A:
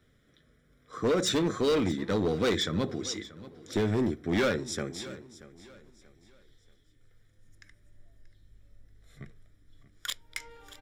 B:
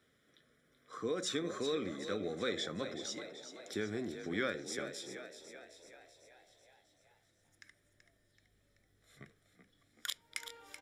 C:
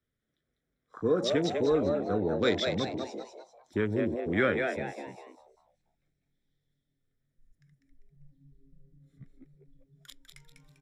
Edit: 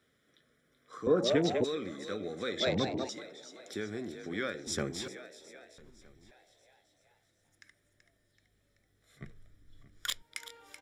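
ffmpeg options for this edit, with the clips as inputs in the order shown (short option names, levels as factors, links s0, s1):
-filter_complex "[2:a]asplit=2[s0][s1];[0:a]asplit=3[s2][s3][s4];[1:a]asplit=6[s5][s6][s7][s8][s9][s10];[s5]atrim=end=1.072[s11];[s0]atrim=start=1.068:end=1.642[s12];[s6]atrim=start=1.638:end=2.602[s13];[s1]atrim=start=2.598:end=3.092[s14];[s7]atrim=start=3.088:end=4.672[s15];[s2]atrim=start=4.668:end=5.082[s16];[s8]atrim=start=5.078:end=5.782[s17];[s3]atrim=start=5.778:end=6.312[s18];[s9]atrim=start=6.308:end=9.222[s19];[s4]atrim=start=9.218:end=10.222[s20];[s10]atrim=start=10.218[s21];[s11][s12]acrossfade=d=0.004:c1=hsin:c2=hsin[s22];[s22][s13]acrossfade=d=0.004:c1=hsin:c2=hsin[s23];[s23][s14]acrossfade=d=0.004:c1=hsin:c2=hsin[s24];[s24][s15]acrossfade=d=0.004:c1=hsin:c2=hsin[s25];[s25][s16]acrossfade=d=0.004:c1=hsin:c2=hsin[s26];[s26][s17]acrossfade=d=0.004:c1=hsin:c2=hsin[s27];[s27][s18]acrossfade=d=0.004:c1=hsin:c2=hsin[s28];[s28][s19]acrossfade=d=0.004:c1=hsin:c2=hsin[s29];[s29][s20]acrossfade=d=0.004:c1=hsin:c2=hsin[s30];[s30][s21]acrossfade=d=0.004:c1=hsin:c2=hsin"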